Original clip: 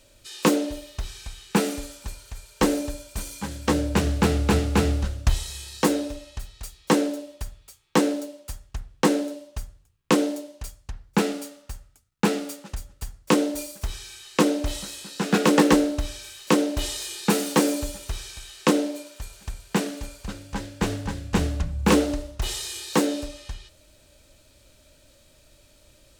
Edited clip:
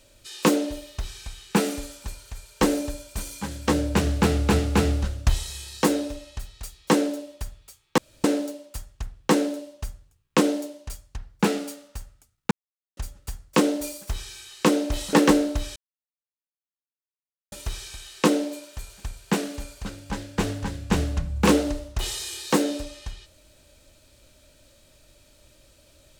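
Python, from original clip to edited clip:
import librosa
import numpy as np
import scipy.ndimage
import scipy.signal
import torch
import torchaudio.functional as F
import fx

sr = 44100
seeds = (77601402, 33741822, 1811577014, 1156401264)

y = fx.edit(x, sr, fx.insert_room_tone(at_s=7.98, length_s=0.26),
    fx.silence(start_s=12.25, length_s=0.46),
    fx.cut(start_s=14.87, length_s=0.69),
    fx.silence(start_s=16.19, length_s=1.76), tone=tone)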